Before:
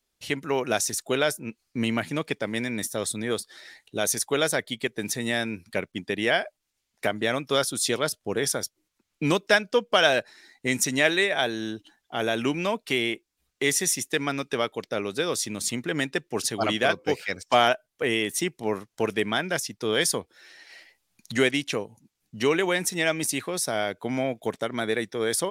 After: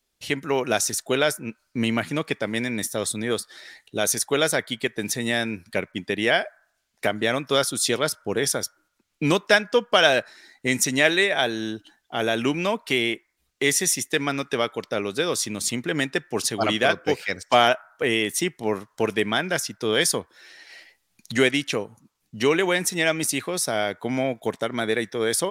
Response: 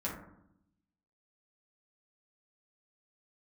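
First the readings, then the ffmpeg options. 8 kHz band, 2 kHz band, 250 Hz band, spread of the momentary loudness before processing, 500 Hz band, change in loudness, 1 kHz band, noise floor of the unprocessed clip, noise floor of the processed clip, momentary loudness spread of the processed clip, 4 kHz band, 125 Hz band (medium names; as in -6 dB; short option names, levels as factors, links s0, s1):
+2.5 dB, +2.5 dB, +2.5 dB, 10 LU, +2.5 dB, +2.5 dB, +2.5 dB, -80 dBFS, -73 dBFS, 10 LU, +3.0 dB, +2.5 dB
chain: -filter_complex "[0:a]asplit=2[s0][s1];[s1]highpass=f=980:w=0.5412,highpass=f=980:w=1.3066[s2];[1:a]atrim=start_sample=2205,lowpass=6600[s3];[s2][s3]afir=irnorm=-1:irlink=0,volume=0.0841[s4];[s0][s4]amix=inputs=2:normalize=0,volume=1.33"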